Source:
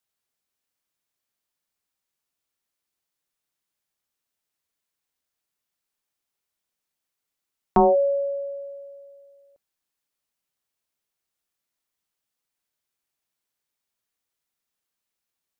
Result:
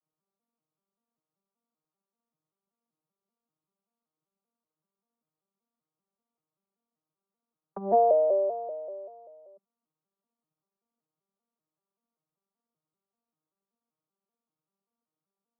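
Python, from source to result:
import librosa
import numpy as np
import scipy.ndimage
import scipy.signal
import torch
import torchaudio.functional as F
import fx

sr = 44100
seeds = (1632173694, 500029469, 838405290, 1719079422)

y = fx.vocoder_arp(x, sr, chord='major triad', root=51, every_ms=193)
y = scipy.signal.sosfilt(scipy.signal.ellip(4, 1.0, 40, 1300.0, 'lowpass', fs=sr, output='sos'), y)
y = fx.over_compress(y, sr, threshold_db=-24.0, ratio=-0.5)
y = y * librosa.db_to_amplitude(2.5)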